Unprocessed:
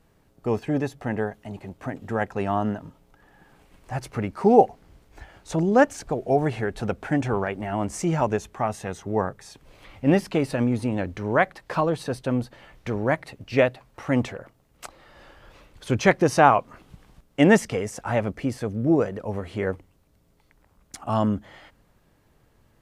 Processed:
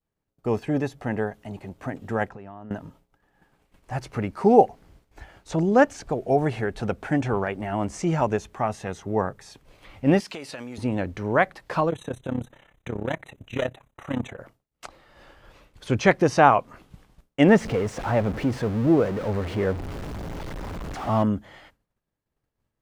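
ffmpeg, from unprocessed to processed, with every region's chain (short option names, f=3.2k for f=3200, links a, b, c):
-filter_complex "[0:a]asettb=1/sr,asplit=3[a][b][c];[a]atrim=end=2.294[d];[b]atrim=start=2.29:end=2.71,asetpts=PTS-STARTPTS,afade=t=in:d=0.004:c=qsin,afade=t=out:st=0.416:d=0.004:c=qsin,aemphasis=mode=reproduction:type=75kf,acompressor=threshold=-37dB:ratio=12:attack=3.2:release=140:knee=1:detection=peak[e];[c]atrim=start=2.706[f];[d][e]acrossfade=d=0.004:c1=hsin:c2=qsin[g];[g][f]acrossfade=d=0.004:c1=qsin:c2=hsin,asettb=1/sr,asplit=3[h][i][j];[h]atrim=end=10.204[k];[i]atrim=start=10.2:end=10.78,asetpts=PTS-STARTPTS,afade=t=in:d=0.004:c=qsin,afade=t=out:st=0.576:d=0.004:c=qsin,highpass=f=420:p=1,highshelf=f=2.4k:g=11.5,acompressor=threshold=-33dB:ratio=5:attack=3.2:release=140:knee=1:detection=peak[l];[j]atrim=start=10.776[m];[k][l]acrossfade=d=0.004:c1=hsin:c2=qsin[n];[n][m]acrossfade=d=0.004:c1=qsin:c2=hsin,asettb=1/sr,asplit=3[o][p][q];[o]atrim=end=11.904[r];[p]atrim=start=11.9:end=14.39,asetpts=PTS-STARTPTS,afade=t=in:d=0.004:c=qsin,afade=t=out:st=2.486:d=0.004:c=qsin,volume=19dB,asoftclip=hard,volume=-19dB,tremolo=f=33:d=0.857,asuperstop=centerf=4900:order=20:qfactor=2.6[s];[q]atrim=start=14.386[t];[r][s]acrossfade=d=0.004:c1=hsin:c2=qsin[u];[u][t]acrossfade=d=0.004:c1=qsin:c2=hsin,asettb=1/sr,asplit=3[v][w][x];[v]atrim=end=17.484[y];[w]atrim=start=17.48:end=21.23,asetpts=PTS-STARTPTS,afade=t=in:d=0.004:c=qsin,afade=t=out:st=3.746:d=0.004:c=qsin,aeval=exprs='val(0)+0.5*0.0473*sgn(val(0))':c=same,highshelf=f=2.7k:g=-11.5[z];[x]atrim=start=21.226[aa];[y][z]acrossfade=d=0.004:c1=hsin:c2=qsin[ab];[ab][aa]acrossfade=d=0.004:c1=qsin:c2=hsin,agate=range=-33dB:threshold=-47dB:ratio=3:detection=peak,acrossover=split=7200[ac][ad];[ad]acompressor=threshold=-55dB:ratio=4:attack=1:release=60[ae];[ac][ae]amix=inputs=2:normalize=0"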